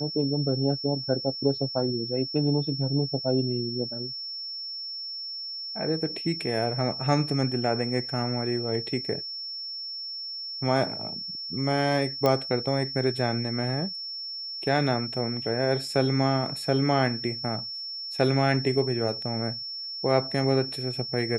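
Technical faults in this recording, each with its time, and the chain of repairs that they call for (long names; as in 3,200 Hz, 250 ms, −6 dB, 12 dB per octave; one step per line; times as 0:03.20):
whistle 5,400 Hz −33 dBFS
0:12.26: click −11 dBFS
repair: click removal
notch filter 5,400 Hz, Q 30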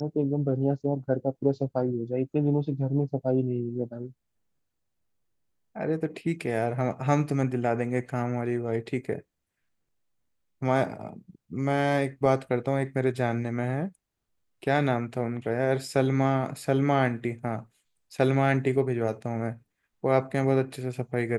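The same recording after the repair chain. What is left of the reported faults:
none of them is left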